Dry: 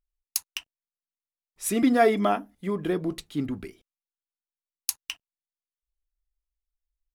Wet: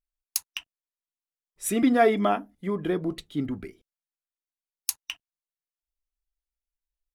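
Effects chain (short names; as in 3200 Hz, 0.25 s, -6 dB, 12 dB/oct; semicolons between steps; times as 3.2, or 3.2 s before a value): spectral noise reduction 6 dB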